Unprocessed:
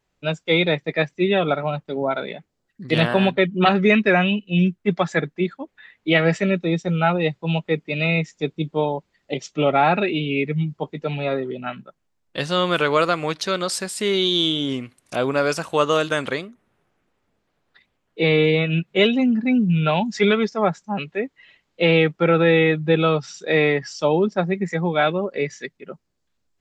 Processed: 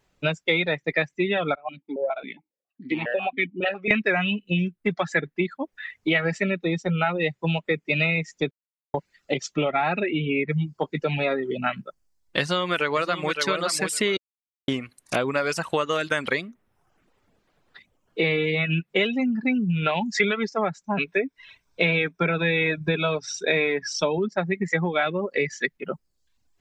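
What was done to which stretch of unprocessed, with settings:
1.55–3.91 s: stepped vowel filter 7.3 Hz
8.51–8.94 s: mute
10.01–10.49 s: low-pass 2.2 kHz
12.40–13.40 s: echo throw 560 ms, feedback 15%, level -8.5 dB
14.17–14.68 s: mute
20.85–24.18 s: rippled EQ curve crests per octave 1.6, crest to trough 9 dB
whole clip: reverb removal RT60 0.62 s; compression 6:1, threshold -28 dBFS; dynamic bell 2 kHz, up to +6 dB, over -49 dBFS, Q 1.6; trim +6 dB

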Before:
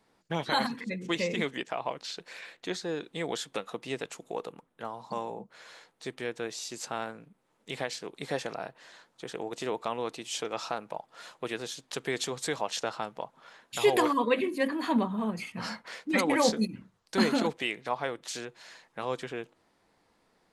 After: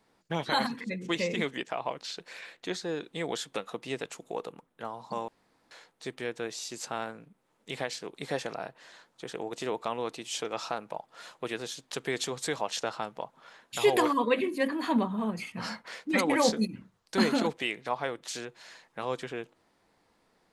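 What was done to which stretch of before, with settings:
5.28–5.71 s: room tone

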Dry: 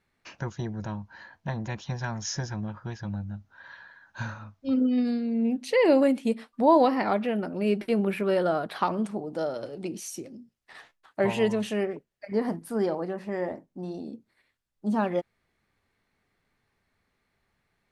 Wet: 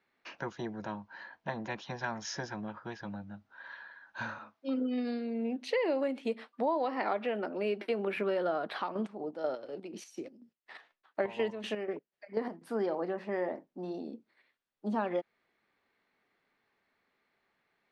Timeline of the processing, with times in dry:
4.38–8.17 s: high-pass 250 Hz
8.71–12.63 s: square tremolo 4.1 Hz, depth 65%, duty 45%
whole clip: three-band isolator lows -13 dB, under 200 Hz, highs -16 dB, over 4.8 kHz; compression 6:1, threshold -27 dBFS; bass shelf 130 Hz -8 dB

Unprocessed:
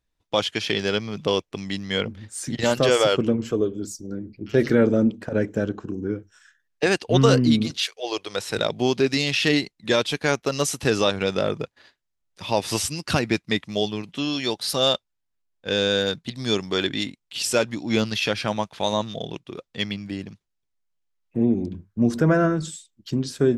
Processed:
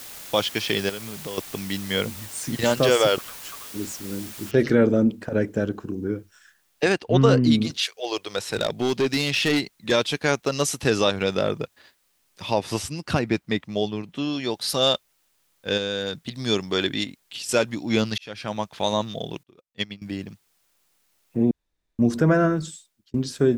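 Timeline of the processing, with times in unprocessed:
0.89–1.38 s: compression 2.5:1, threshold -35 dBFS
3.18–3.74 s: steep high-pass 950 Hz
4.51 s: noise floor step -40 dB -68 dB
6.92–7.44 s: treble shelf 3.7 kHz -11 dB
8.01–9.92 s: overload inside the chain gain 16.5 dB
12.54–14.54 s: treble shelf 2.4 kHz -8 dB
15.77–16.32 s: compression 2.5:1, threshold -25 dBFS
17.04–17.49 s: compression 12:1, threshold -30 dBFS
18.18–18.72 s: fade in linear
19.43–20.02 s: upward expansion 2.5:1, over -42 dBFS
21.51–21.99 s: room tone
22.53–23.14 s: fade out

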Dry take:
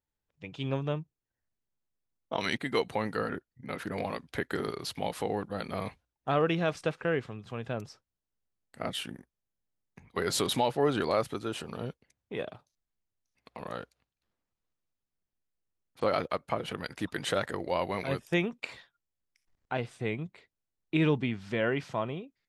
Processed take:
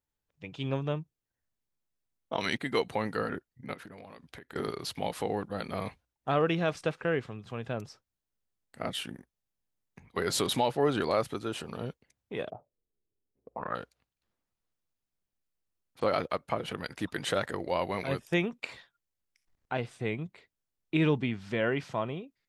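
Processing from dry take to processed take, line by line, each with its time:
3.73–4.56 s: compression 16:1, threshold -43 dBFS
12.50–13.75 s: touch-sensitive low-pass 400–1500 Hz up, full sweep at -38.5 dBFS

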